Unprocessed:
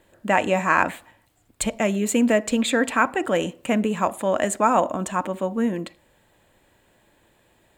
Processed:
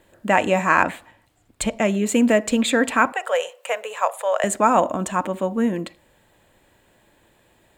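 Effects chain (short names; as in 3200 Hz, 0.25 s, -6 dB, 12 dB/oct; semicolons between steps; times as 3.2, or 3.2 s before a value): 0.83–2.12 high shelf 9300 Hz -7.5 dB; 3.12–4.44 elliptic high-pass 480 Hz, stop band 40 dB; gain +2 dB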